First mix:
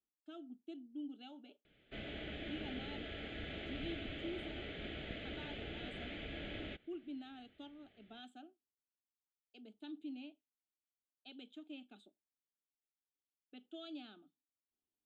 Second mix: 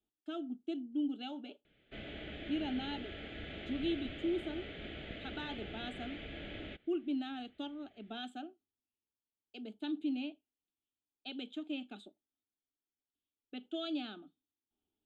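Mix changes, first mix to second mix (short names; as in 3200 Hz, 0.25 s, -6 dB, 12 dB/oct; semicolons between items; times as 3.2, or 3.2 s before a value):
speech +10.5 dB; master: add high shelf 8800 Hz -4 dB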